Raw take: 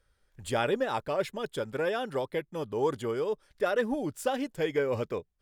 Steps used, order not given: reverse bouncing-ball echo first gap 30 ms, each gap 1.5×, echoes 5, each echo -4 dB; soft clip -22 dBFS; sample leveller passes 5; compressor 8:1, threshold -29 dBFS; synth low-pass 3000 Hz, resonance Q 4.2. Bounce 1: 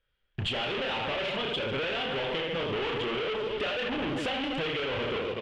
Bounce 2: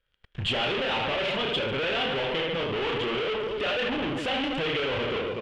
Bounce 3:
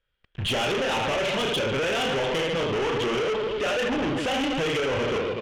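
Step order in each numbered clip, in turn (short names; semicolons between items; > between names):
reverse bouncing-ball echo > sample leveller > soft clip > synth low-pass > compressor; reverse bouncing-ball echo > soft clip > sample leveller > compressor > synth low-pass; reverse bouncing-ball echo > compressor > sample leveller > synth low-pass > soft clip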